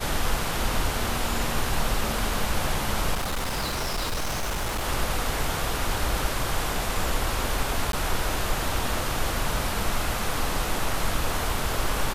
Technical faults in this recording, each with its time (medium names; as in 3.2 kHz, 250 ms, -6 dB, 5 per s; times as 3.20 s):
3.14–4.87 s: clipped -24 dBFS
7.92–7.93 s: dropout 12 ms